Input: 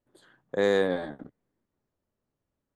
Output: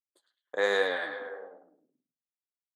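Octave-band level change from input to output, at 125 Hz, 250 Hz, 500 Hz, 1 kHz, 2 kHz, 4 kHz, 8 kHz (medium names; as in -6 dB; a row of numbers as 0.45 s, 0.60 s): under -15 dB, -13.0 dB, -3.5 dB, +1.0 dB, +4.5 dB, +3.0 dB, no reading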